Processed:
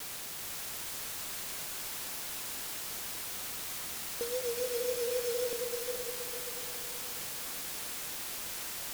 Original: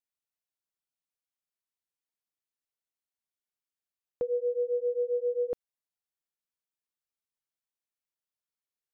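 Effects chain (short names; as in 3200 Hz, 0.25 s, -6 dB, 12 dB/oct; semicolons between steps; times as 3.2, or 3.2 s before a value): block floating point 3-bit; bell 250 Hz +8.5 dB 0.34 oct; notches 60/120/180/240/300/360/420/480 Hz; requantised 6-bit, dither triangular; vibrato 3.7 Hz 74 cents; diffused feedback echo 0.462 s, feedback 45%, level -4 dB; gain -5 dB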